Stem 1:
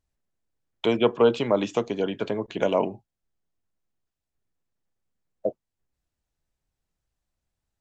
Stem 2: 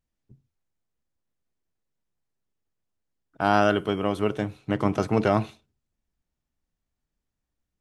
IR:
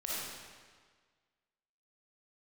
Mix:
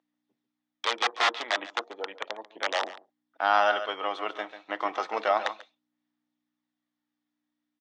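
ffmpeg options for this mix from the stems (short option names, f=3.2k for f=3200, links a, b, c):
-filter_complex "[0:a]afwtdn=0.0126,aeval=exprs='(mod(5.31*val(0)+1,2)-1)/5.31':c=same,volume=-6dB,asplit=2[a][b];[b]volume=-18dB[c];[1:a]aeval=exprs='val(0)+0.002*(sin(2*PI*60*n/s)+sin(2*PI*2*60*n/s)/2+sin(2*PI*3*60*n/s)/3+sin(2*PI*4*60*n/s)/4+sin(2*PI*5*60*n/s)/5)':c=same,volume=-3.5dB,asplit=2[d][e];[e]volume=-11dB[f];[c][f]amix=inputs=2:normalize=0,aecho=0:1:141:1[g];[a][d][g]amix=inputs=3:normalize=0,aphaser=in_gain=1:out_gain=1:delay=3.1:decay=0.23:speed=0.33:type=sinusoidal,highpass=f=410:w=0.5412,highpass=f=410:w=1.3066,equalizer=f=410:t=q:w=4:g=-10,equalizer=f=820:t=q:w=4:g=5,equalizer=f=1.2k:t=q:w=4:g=5,equalizer=f=1.9k:t=q:w=4:g=7,equalizer=f=3.5k:t=q:w=4:g=7,lowpass=f=5.8k:w=0.5412,lowpass=f=5.8k:w=1.3066"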